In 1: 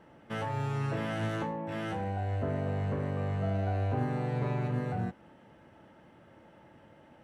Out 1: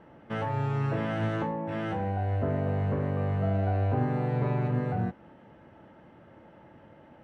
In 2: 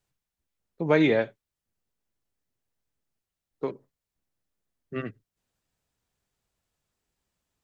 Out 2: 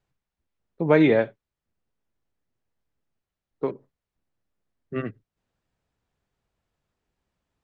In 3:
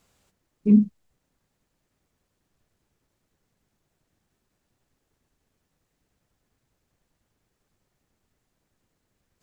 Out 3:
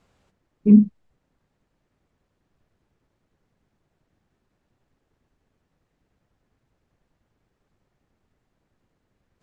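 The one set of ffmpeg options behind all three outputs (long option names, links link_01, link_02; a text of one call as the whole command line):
ffmpeg -i in.wav -af "aemphasis=mode=reproduction:type=75fm,volume=3dB" out.wav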